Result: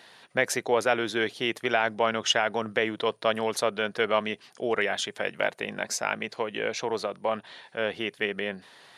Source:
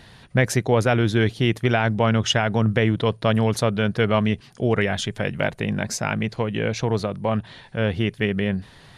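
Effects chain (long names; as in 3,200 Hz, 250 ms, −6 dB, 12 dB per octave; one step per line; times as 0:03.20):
high-pass filter 430 Hz 12 dB per octave
level −2 dB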